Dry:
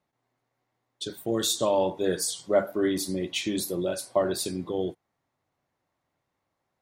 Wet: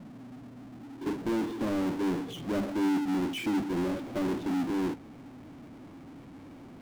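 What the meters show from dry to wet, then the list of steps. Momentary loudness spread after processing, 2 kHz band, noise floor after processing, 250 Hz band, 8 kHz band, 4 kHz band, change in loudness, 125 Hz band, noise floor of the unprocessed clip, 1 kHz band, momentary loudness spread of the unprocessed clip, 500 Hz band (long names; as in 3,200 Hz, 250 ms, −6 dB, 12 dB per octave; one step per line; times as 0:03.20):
20 LU, −1.5 dB, −49 dBFS, +3.0 dB, −18.0 dB, −10.5 dB, −3.5 dB, −0.5 dB, −81 dBFS, −3.0 dB, 7 LU, −9.0 dB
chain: formant resonators in series i
low-pass filter sweep 210 Hz → 1,200 Hz, 0:00.67–0:01.73
power curve on the samples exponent 0.35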